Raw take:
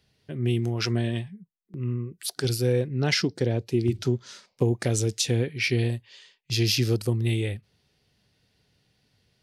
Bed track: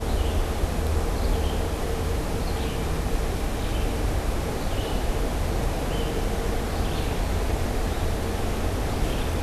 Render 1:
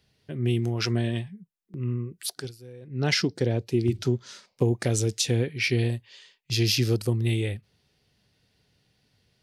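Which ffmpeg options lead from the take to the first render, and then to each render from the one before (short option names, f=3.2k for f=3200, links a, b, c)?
-filter_complex "[0:a]asplit=3[a][b][c];[a]atrim=end=2.52,asetpts=PTS-STARTPTS,afade=t=out:st=2.27:d=0.25:silence=0.0841395[d];[b]atrim=start=2.52:end=2.81,asetpts=PTS-STARTPTS,volume=-21.5dB[e];[c]atrim=start=2.81,asetpts=PTS-STARTPTS,afade=t=in:d=0.25:silence=0.0841395[f];[d][e][f]concat=n=3:v=0:a=1"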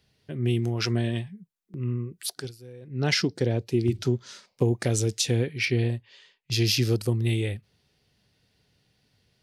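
-filter_complex "[0:a]asettb=1/sr,asplit=3[a][b][c];[a]atrim=end=5.654[d];[b]atrim=start=5.65:end=6.52,asetpts=PTS-STARTPTS,afade=t=in:d=0.004:c=qsin,afade=t=out:st=0.866:d=0.004:c=qsin,highshelf=f=4.8k:g=-10.5[e];[c]atrim=start=6.516[f];[d][e]acrossfade=d=0.004:c1=hsin:c2=qsin[g];[g][f]acrossfade=d=0.004:c1=qsin:c2=hsin"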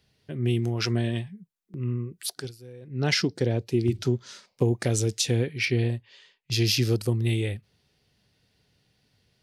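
-af anull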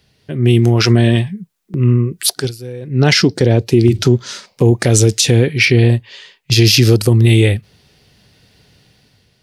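-af "dynaudnorm=f=150:g=7:m=6.5dB,alimiter=level_in=10.5dB:limit=-1dB:release=50:level=0:latency=1"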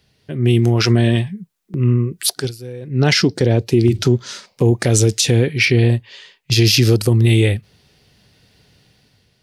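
-af "volume=-3dB"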